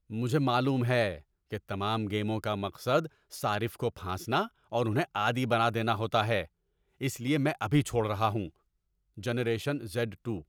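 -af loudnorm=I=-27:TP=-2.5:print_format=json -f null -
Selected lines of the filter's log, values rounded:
"input_i" : "-30.5",
"input_tp" : "-12.9",
"input_lra" : "2.6",
"input_thresh" : "-40.9",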